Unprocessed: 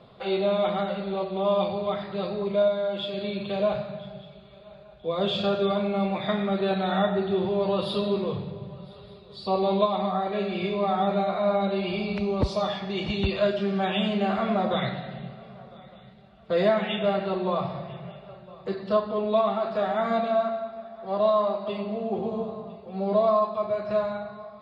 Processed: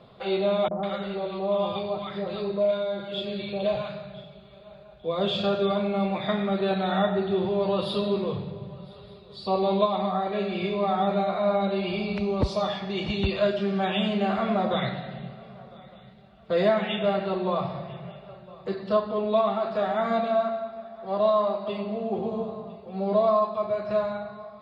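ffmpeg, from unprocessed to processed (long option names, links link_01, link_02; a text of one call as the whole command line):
ffmpeg -i in.wav -filter_complex "[0:a]asettb=1/sr,asplit=3[link_01][link_02][link_03];[link_01]atrim=end=0.684[link_04];[link_02]atrim=start=0.68:end=4.24,asetpts=PTS-STARTPTS,afade=type=in:duration=0.004:curve=qsin,afade=type=out:start_time=3.556:duration=0.004:curve=qsin,acrossover=split=220|990[link_05][link_06][link_07];[link_06]adelay=30[link_08];[link_07]adelay=150[link_09];[link_05][link_08][link_09]amix=inputs=3:normalize=0,atrim=end_sample=156996[link_10];[link_03]atrim=start=4.236[link_11];[link_04][link_10]acrossfade=duration=0.004:curve1=hsin:curve2=qsin[link_12];[link_12][link_11]acrossfade=duration=0.004:curve1=qsin:curve2=hsin" out.wav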